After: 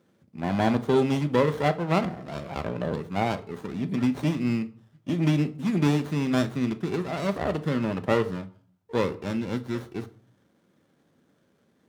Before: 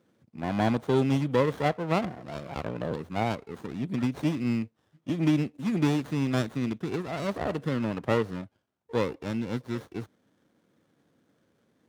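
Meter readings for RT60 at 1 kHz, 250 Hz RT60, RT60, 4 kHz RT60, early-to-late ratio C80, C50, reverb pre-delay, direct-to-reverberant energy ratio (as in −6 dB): 0.50 s, 0.60 s, 0.50 s, 0.30 s, 22.5 dB, 18.0 dB, 5 ms, 9.5 dB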